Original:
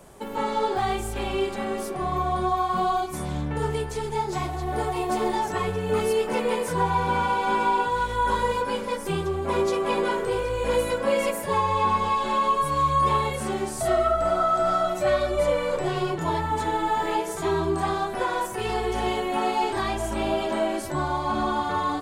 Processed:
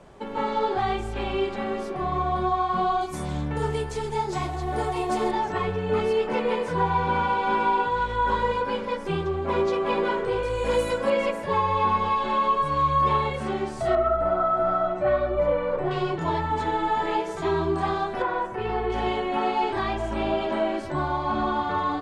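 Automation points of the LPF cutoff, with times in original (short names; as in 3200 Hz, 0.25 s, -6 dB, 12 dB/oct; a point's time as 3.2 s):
4200 Hz
from 3.01 s 8600 Hz
from 5.31 s 3900 Hz
from 10.43 s 8900 Hz
from 11.1 s 3900 Hz
from 13.95 s 1700 Hz
from 15.91 s 4500 Hz
from 18.22 s 2100 Hz
from 18.9 s 3700 Hz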